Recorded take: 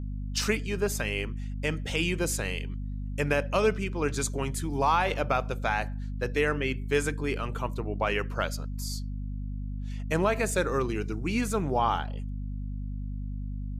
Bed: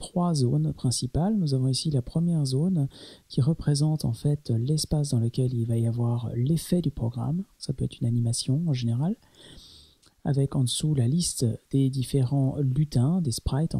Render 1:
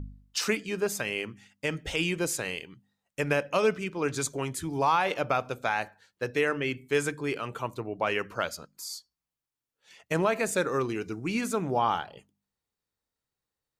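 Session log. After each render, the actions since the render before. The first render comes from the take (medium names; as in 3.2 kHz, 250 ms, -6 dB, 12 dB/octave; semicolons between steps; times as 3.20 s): de-hum 50 Hz, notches 5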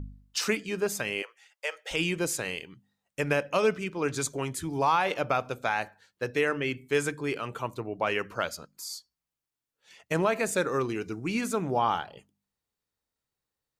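1.22–1.91 s: elliptic high-pass 500 Hz, stop band 50 dB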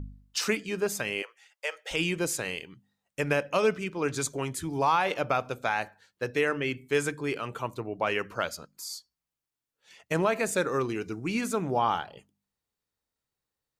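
no audible change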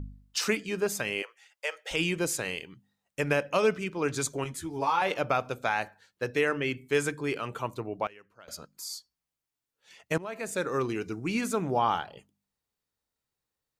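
4.44–5.02 s: three-phase chorus; 7.68–8.87 s: dip -23 dB, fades 0.39 s logarithmic; 10.18–10.85 s: fade in, from -19.5 dB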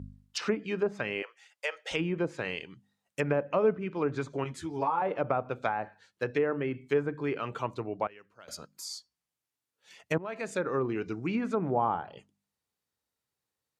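high-pass 74 Hz; low-pass that closes with the level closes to 1 kHz, closed at -24 dBFS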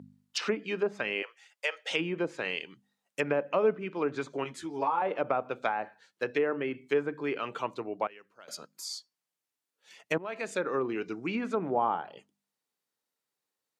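dynamic bell 3.1 kHz, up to +4 dB, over -48 dBFS, Q 1.2; high-pass 220 Hz 12 dB/octave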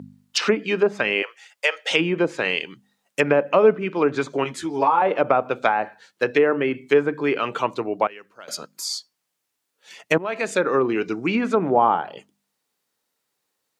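trim +10.5 dB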